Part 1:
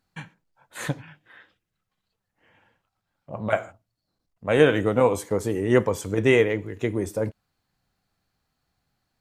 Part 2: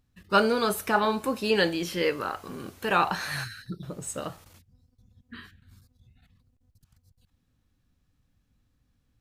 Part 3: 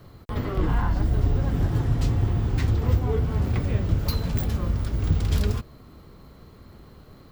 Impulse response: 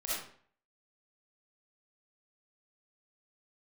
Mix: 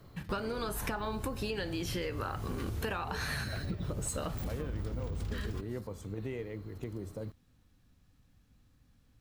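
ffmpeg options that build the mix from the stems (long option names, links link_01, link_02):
-filter_complex "[0:a]lowshelf=frequency=340:gain=12,acompressor=threshold=-29dB:ratio=2.5,volume=-12dB[link_01];[1:a]acontrast=39,acompressor=threshold=-22dB:ratio=6,volume=-1dB[link_02];[2:a]alimiter=limit=-19dB:level=0:latency=1:release=85,volume=-7dB[link_03];[link_01][link_02][link_03]amix=inputs=3:normalize=0,acompressor=threshold=-32dB:ratio=10"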